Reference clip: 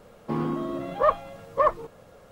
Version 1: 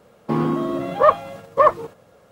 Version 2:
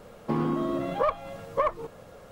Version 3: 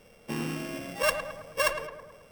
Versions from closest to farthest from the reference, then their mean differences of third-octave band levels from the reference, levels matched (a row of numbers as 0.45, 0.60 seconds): 1, 2, 3; 2.5, 4.0, 8.0 decibels